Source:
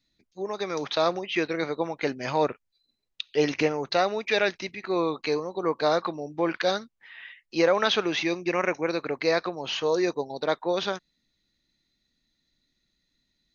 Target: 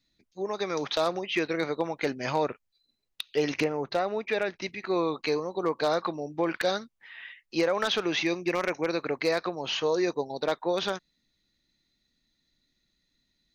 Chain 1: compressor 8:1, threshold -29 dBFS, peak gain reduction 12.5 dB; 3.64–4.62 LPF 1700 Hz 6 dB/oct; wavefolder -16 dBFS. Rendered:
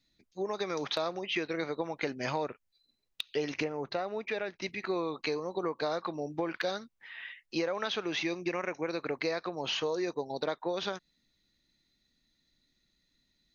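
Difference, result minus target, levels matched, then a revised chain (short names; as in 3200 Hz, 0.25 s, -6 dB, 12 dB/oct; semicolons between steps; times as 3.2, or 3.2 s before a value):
compressor: peak gain reduction +7 dB
compressor 8:1, threshold -21 dBFS, peak gain reduction 5.5 dB; 3.64–4.62 LPF 1700 Hz 6 dB/oct; wavefolder -16 dBFS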